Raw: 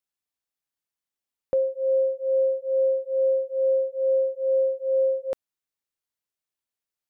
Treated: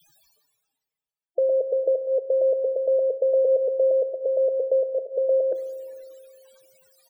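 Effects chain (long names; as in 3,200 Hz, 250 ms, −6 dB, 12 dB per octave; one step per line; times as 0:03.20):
slices reordered back to front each 115 ms, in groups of 6
spectral peaks only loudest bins 16
comb filter 6.4 ms, depth 46%
reversed playback
upward compression, threshold −34 dBFS
reversed playback
spring reverb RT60 2.2 s, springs 34 ms, chirp 65 ms, DRR 12.5 dB
level +3.5 dB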